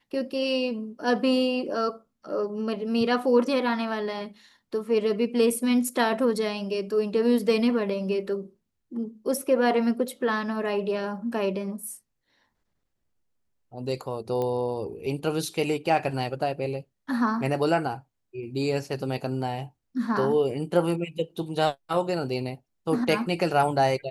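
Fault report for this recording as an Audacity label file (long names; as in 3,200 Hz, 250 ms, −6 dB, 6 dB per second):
14.420000	14.420000	click −18 dBFS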